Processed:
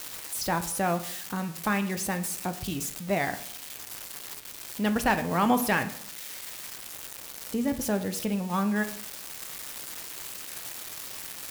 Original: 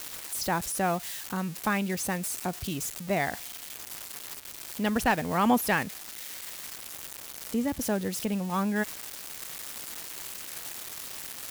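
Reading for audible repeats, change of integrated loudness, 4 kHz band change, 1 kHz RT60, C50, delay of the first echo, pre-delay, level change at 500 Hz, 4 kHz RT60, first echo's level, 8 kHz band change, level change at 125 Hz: no echo audible, +0.5 dB, +0.5 dB, 0.60 s, 13.5 dB, no echo audible, 6 ms, +0.5 dB, 0.35 s, no echo audible, 0.0 dB, +1.0 dB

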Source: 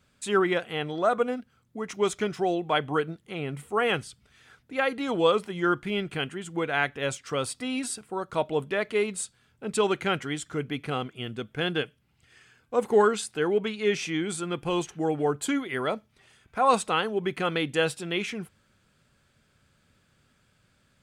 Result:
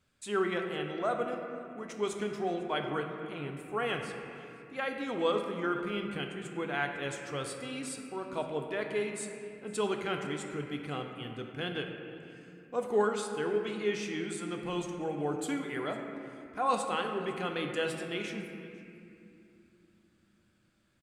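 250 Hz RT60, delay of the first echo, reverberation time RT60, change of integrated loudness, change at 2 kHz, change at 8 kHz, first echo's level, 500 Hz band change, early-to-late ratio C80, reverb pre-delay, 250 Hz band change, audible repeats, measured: 4.5 s, 501 ms, 2.7 s, −7.0 dB, −6.5 dB, −8.0 dB, −22.5 dB, −6.5 dB, 5.5 dB, 3 ms, −6.0 dB, 1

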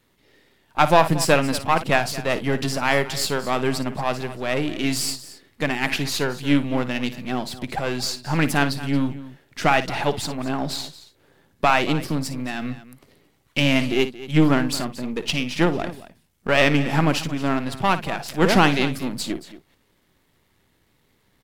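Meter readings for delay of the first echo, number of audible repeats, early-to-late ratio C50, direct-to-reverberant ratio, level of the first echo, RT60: 56 ms, 2, no reverb audible, no reverb audible, −13.5 dB, no reverb audible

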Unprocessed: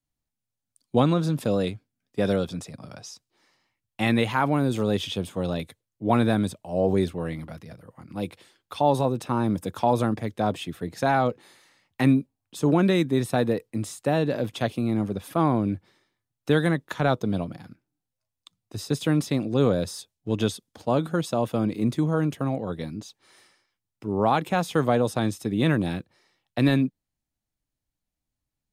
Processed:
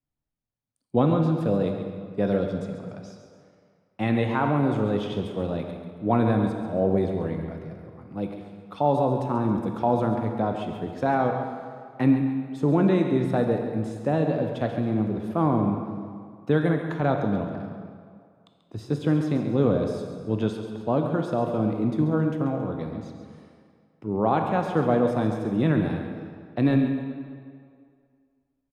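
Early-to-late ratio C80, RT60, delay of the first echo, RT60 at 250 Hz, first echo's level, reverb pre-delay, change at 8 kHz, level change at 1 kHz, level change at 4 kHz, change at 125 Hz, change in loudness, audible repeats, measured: 5.0 dB, 2.1 s, 137 ms, 1.9 s, −10.0 dB, 15 ms, below −10 dB, −0.5 dB, −9.0 dB, +0.5 dB, 0.0 dB, 2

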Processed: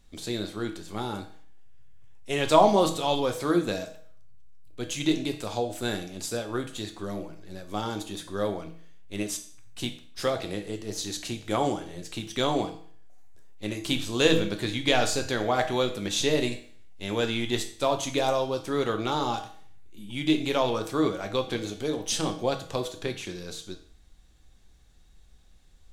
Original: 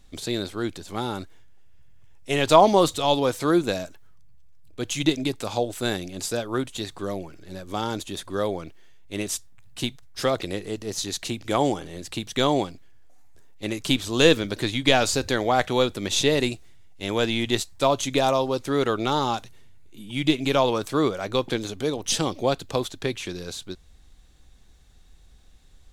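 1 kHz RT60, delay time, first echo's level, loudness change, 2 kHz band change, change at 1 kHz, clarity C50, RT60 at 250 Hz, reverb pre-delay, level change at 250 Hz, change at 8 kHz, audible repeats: 0.55 s, no echo audible, no echo audible, −3.5 dB, −4.0 dB, −4.0 dB, 10.5 dB, 0.55 s, 6 ms, −3.0 dB, −3.5 dB, no echo audible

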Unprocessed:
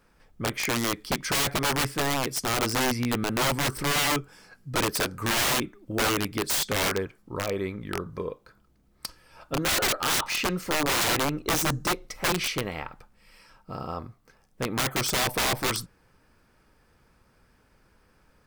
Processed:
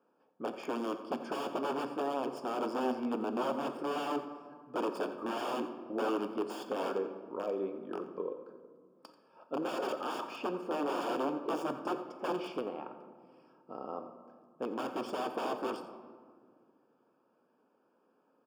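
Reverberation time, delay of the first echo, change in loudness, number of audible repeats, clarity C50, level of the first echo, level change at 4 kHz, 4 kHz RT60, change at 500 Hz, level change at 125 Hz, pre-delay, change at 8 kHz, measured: 1.9 s, 87 ms, −10.0 dB, 1, 9.0 dB, −15.0 dB, −20.0 dB, 0.90 s, −3.5 dB, −22.5 dB, 3 ms, −28.0 dB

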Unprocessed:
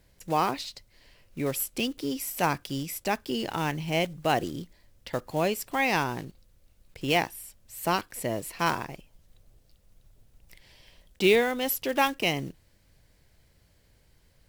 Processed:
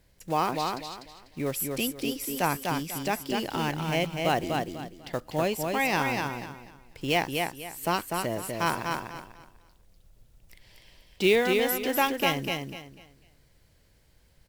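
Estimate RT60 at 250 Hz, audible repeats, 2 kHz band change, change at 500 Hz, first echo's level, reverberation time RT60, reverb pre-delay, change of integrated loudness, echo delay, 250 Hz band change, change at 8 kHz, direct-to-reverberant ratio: no reverb audible, 3, +0.5 dB, +0.5 dB, −4.0 dB, no reverb audible, no reverb audible, 0.0 dB, 247 ms, +0.5 dB, +0.5 dB, no reverb audible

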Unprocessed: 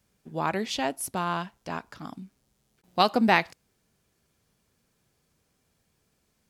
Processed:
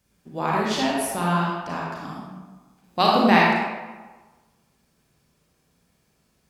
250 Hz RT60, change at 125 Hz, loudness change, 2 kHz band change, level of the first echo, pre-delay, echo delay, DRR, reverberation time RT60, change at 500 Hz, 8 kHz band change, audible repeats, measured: 1.2 s, +8.5 dB, +5.5 dB, +5.5 dB, no echo audible, 30 ms, no echo audible, −4.5 dB, 1.3 s, +5.5 dB, +3.5 dB, no echo audible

